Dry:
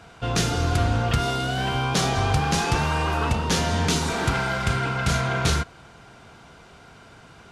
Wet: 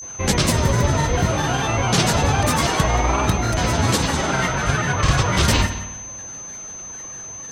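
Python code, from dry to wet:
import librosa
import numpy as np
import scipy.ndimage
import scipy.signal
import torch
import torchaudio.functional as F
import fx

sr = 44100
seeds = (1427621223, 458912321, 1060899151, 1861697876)

p1 = fx.spec_repair(x, sr, seeds[0], start_s=0.71, length_s=0.93, low_hz=740.0, high_hz=10000.0, source='both')
p2 = fx.granulator(p1, sr, seeds[1], grain_ms=100.0, per_s=20.0, spray_ms=100.0, spread_st=7)
p3 = p2 + fx.echo_single(p2, sr, ms=177, db=-17.5, dry=0)
p4 = fx.rev_spring(p3, sr, rt60_s=1.1, pass_ms=(52,), chirp_ms=60, drr_db=10.5)
p5 = p4 + 10.0 ** (-37.0 / 20.0) * np.sin(2.0 * np.pi * 6200.0 * np.arange(len(p4)) / sr)
y = F.gain(torch.from_numpy(p5), 5.0).numpy()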